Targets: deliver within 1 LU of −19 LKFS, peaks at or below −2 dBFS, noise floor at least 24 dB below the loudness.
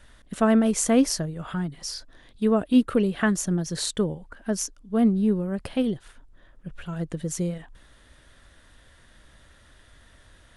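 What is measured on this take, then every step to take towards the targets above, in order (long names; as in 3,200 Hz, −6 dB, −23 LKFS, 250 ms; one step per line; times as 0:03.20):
integrated loudness −25.0 LKFS; sample peak −8.5 dBFS; target loudness −19.0 LKFS
→ level +6 dB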